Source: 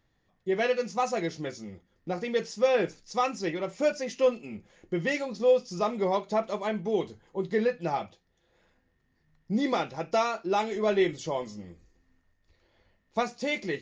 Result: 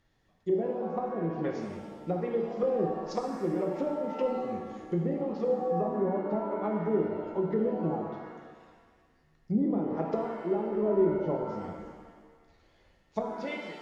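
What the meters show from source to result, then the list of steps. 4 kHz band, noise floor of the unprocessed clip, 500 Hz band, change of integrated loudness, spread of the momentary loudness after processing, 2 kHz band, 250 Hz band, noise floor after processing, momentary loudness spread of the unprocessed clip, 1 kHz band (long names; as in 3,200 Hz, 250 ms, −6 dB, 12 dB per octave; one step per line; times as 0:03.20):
below −10 dB, −73 dBFS, −2.0 dB, −2.0 dB, 10 LU, −12.0 dB, +2.0 dB, −66 dBFS, 12 LU, −4.5 dB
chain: fade-out on the ending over 0.77 s
treble cut that deepens with the level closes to 390 Hz, closed at −25.5 dBFS
reverb with rising layers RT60 1.5 s, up +7 semitones, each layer −8 dB, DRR 1.5 dB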